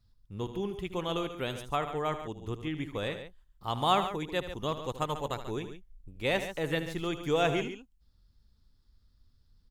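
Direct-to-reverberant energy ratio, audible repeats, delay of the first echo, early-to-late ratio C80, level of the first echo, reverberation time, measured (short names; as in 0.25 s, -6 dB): none, 2, 77 ms, none, -12.0 dB, none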